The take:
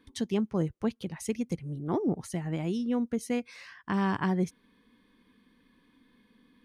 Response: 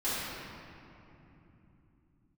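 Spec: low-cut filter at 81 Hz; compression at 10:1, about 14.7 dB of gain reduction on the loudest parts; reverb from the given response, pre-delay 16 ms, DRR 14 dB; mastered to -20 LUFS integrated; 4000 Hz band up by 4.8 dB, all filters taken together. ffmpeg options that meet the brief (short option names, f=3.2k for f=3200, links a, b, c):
-filter_complex "[0:a]highpass=81,equalizer=f=4k:t=o:g=6.5,acompressor=threshold=-39dB:ratio=10,asplit=2[a][b];[1:a]atrim=start_sample=2205,adelay=16[c];[b][c]afir=irnorm=-1:irlink=0,volume=-23dB[d];[a][d]amix=inputs=2:normalize=0,volume=23.5dB"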